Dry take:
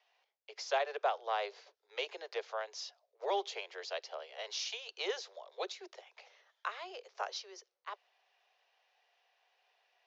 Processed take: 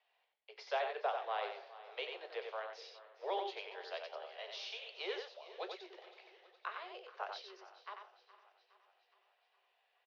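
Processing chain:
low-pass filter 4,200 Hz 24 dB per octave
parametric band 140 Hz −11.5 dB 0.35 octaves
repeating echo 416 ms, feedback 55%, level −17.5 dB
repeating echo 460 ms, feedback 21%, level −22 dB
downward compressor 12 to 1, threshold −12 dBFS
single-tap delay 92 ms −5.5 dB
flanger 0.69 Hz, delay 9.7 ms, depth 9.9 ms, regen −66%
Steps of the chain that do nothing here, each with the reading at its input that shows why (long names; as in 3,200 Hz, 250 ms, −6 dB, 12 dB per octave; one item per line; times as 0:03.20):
parametric band 140 Hz: nothing at its input below 320 Hz
downward compressor, threshold −12 dBFS: peak of its input −20.0 dBFS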